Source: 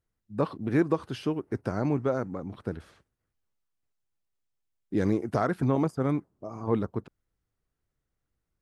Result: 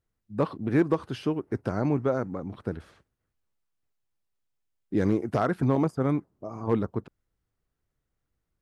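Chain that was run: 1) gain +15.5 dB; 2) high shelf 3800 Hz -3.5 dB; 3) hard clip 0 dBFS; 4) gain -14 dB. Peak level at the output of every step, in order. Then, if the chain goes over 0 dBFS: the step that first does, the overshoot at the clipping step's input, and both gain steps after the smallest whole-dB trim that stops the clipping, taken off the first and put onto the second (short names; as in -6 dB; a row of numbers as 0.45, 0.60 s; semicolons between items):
+3.5, +3.5, 0.0, -14.0 dBFS; step 1, 3.5 dB; step 1 +11.5 dB, step 4 -10 dB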